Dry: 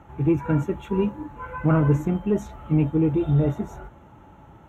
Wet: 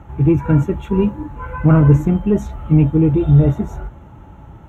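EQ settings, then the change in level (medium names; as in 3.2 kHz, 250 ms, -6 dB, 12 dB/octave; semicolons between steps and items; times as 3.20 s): bass shelf 140 Hz +11.5 dB; +4.0 dB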